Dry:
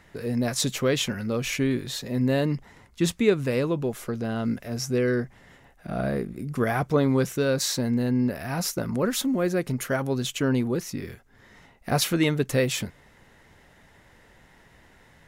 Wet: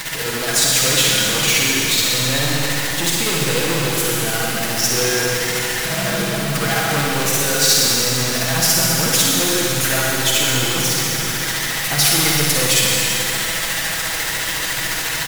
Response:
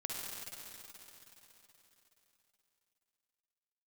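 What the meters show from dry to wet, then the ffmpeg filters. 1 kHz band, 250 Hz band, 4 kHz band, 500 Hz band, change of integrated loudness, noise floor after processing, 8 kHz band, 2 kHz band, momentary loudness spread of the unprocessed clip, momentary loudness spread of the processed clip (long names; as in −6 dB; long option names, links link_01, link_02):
+11.0 dB, +0.5 dB, +17.0 dB, +3.0 dB, +10.0 dB, −23 dBFS, +18.5 dB, +15.0 dB, 8 LU, 7 LU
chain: -filter_complex "[0:a]aeval=exprs='val(0)+0.5*0.0562*sgn(val(0))':channel_layout=same,aecho=1:1:6.2:0.58,asplit=2[link_01][link_02];[link_02]acrusher=bits=3:mix=0:aa=0.5,volume=-10dB[link_03];[link_01][link_03]amix=inputs=2:normalize=0,tremolo=f=14:d=0.57,acrusher=bits=2:mode=log:mix=0:aa=0.000001,asoftclip=type=hard:threshold=-18.5dB,tiltshelf=frequency=1100:gain=-6.5[link_04];[1:a]atrim=start_sample=2205,asetrate=48510,aresample=44100[link_05];[link_04][link_05]afir=irnorm=-1:irlink=0,volume=5.5dB"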